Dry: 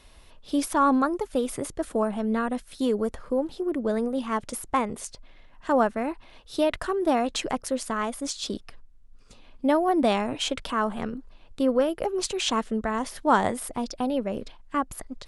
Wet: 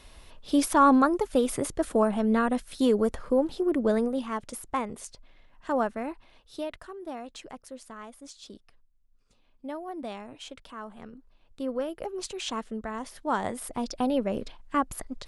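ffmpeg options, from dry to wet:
-af "volume=17.5dB,afade=t=out:st=3.89:d=0.45:silence=0.446684,afade=t=out:st=6.07:d=0.79:silence=0.316228,afade=t=in:st=10.92:d=1.05:silence=0.421697,afade=t=in:st=13.39:d=0.64:silence=0.398107"

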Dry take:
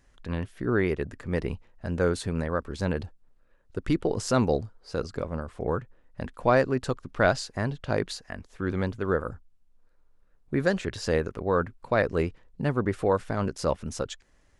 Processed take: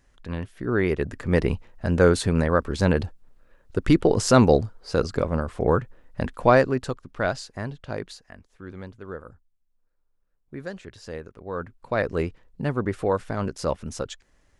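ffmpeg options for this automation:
-af "volume=18.5dB,afade=t=in:st=0.67:d=0.66:silence=0.421697,afade=t=out:st=6.22:d=0.79:silence=0.298538,afade=t=out:st=7.62:d=1:silence=0.421697,afade=t=in:st=11.41:d=0.69:silence=0.281838"

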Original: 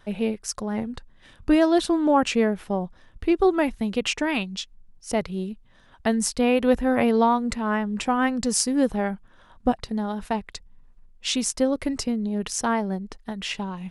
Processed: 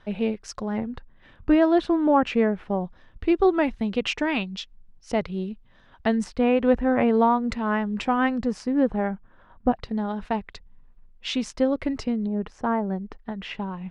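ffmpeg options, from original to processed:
-af "asetnsamples=n=441:p=0,asendcmd='0.78 lowpass f 2500;2.8 lowpass f 4100;6.24 lowpass f 2300;7.44 lowpass f 4200;8.43 lowpass f 1900;9.75 lowpass f 3300;12.27 lowpass f 1300;12.9 lowpass f 2200',lowpass=4.1k"

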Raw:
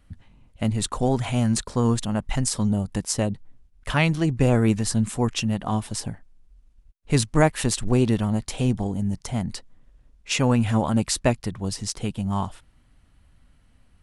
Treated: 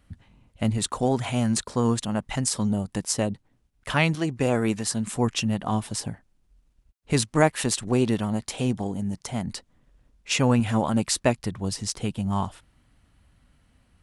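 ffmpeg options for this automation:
-af "asetnsamples=n=441:p=0,asendcmd='0.78 highpass f 140;4.15 highpass f 310;5.07 highpass f 78;7.13 highpass f 180;9.47 highpass f 59;10.6 highpass f 140;11.38 highpass f 52',highpass=f=48:p=1"

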